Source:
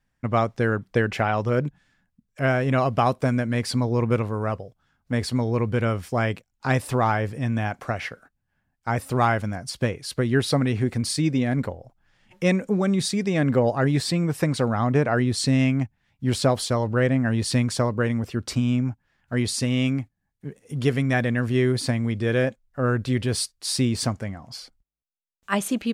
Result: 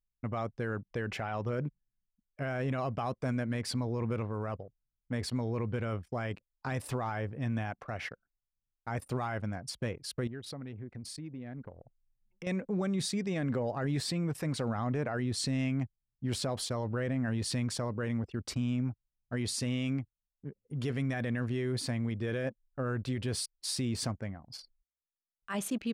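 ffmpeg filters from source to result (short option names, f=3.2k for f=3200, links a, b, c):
-filter_complex "[0:a]asettb=1/sr,asplit=3[a][b][c];[a]atrim=end=10.274[d];[b]atrim=start=10.27:end=12.47,asetpts=PTS-STARTPTS,afade=t=in:d=0.004:c=qsin,afade=t=out:st=2.196:d=0.004:c=qsin,acompressor=threshold=-36dB:ratio=3:attack=3.2:release=140:knee=1:detection=peak[e];[c]atrim=start=12.466[f];[d][e]acrossfade=d=0.004:c1=hsin:c2=qsin[g];[g][f]acrossfade=d=0.004:c1=qsin:c2=hsin,anlmdn=0.631,alimiter=limit=-17.5dB:level=0:latency=1:release=13,volume=-7.5dB"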